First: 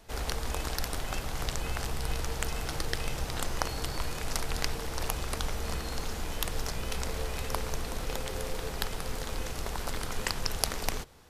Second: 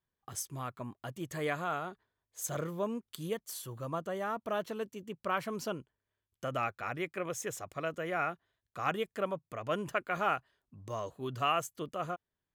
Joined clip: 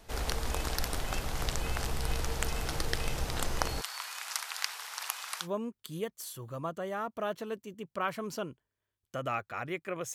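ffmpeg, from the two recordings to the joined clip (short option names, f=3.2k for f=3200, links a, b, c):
-filter_complex "[0:a]asettb=1/sr,asplit=3[a][b][c];[a]atrim=end=3.814[d];[b]atrim=start=3.81:end=5.48,asetpts=PTS-STARTPTS,afade=t=in:d=0.004:c=qsin,afade=t=out:st=1.666:d=0.004:c=qsin,highpass=f=970:w=0.5412,highpass=f=970:w=1.3066[e];[c]atrim=start=5.476[f];[d][e]acrossfade=d=0.004:c1=hsin:c2=qsin[g];[g][f]acrossfade=d=0.004:c1=qsin:c2=hsin,apad=whole_dur=10.14,atrim=end=10.14,atrim=end=5.48,asetpts=PTS-STARTPTS[h];[1:a]atrim=start=2.69:end=7.43,asetpts=PTS-STARTPTS[i];[h][i]acrossfade=d=0.08:c1=tri:c2=tri"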